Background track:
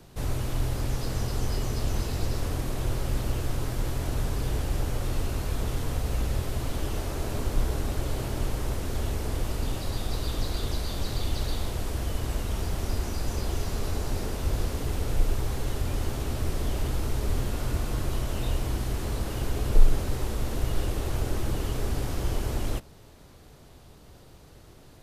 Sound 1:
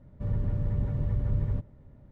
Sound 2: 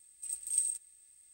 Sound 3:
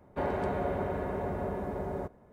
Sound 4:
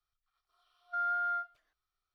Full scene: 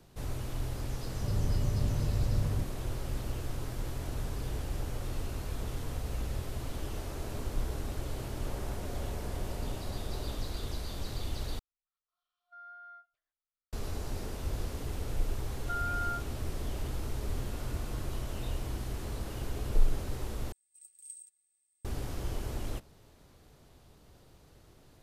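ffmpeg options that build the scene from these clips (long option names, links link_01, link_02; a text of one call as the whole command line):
ffmpeg -i bed.wav -i cue0.wav -i cue1.wav -i cue2.wav -i cue3.wav -filter_complex "[4:a]asplit=2[link_01][link_02];[0:a]volume=-7.5dB[link_03];[3:a]alimiter=level_in=7dB:limit=-24dB:level=0:latency=1:release=71,volume=-7dB[link_04];[link_02]alimiter=level_in=6.5dB:limit=-24dB:level=0:latency=1:release=71,volume=-6.5dB[link_05];[2:a]highpass=frequency=210:poles=1[link_06];[link_03]asplit=3[link_07][link_08][link_09];[link_07]atrim=end=11.594[link_10];[link_01]atrim=end=2.14,asetpts=PTS-STARTPTS,volume=-17.5dB[link_11];[link_08]atrim=start=13.726:end=20.524[link_12];[link_06]atrim=end=1.33,asetpts=PTS-STARTPTS,volume=-16.5dB[link_13];[link_09]atrim=start=21.846[link_14];[1:a]atrim=end=2.11,asetpts=PTS-STARTPTS,volume=-2.5dB,afade=type=in:duration=0.004:curve=hsin,afade=type=out:start_time=2.106:duration=0.004:curve=hsin,adelay=1030[link_15];[link_04]atrim=end=2.32,asetpts=PTS-STARTPTS,volume=-8dB,afade=type=in:duration=0.004:curve=hsin,afade=type=out:start_time=2.316:duration=0.004:curve=hsin,adelay=8290[link_16];[link_05]atrim=end=2.14,asetpts=PTS-STARTPTS,volume=-0.5dB,afade=type=in:duration=0.004:curve=hsin,afade=type=out:start_time=2.136:duration=0.004:curve=hsin,adelay=650916S[link_17];[link_10][link_11]acrossfade=duration=0.004:curve1=hsin:curve2=hsin[link_18];[link_18][link_12]acrossfade=duration=0.004:curve1=hsin:curve2=hsin[link_19];[link_19][link_13]acrossfade=duration=0.004:curve1=hsin:curve2=hsin[link_20];[link_20][link_14]acrossfade=duration=0.004:curve1=hsin:curve2=hsin[link_21];[link_21][link_15][link_16][link_17]amix=inputs=4:normalize=0" out.wav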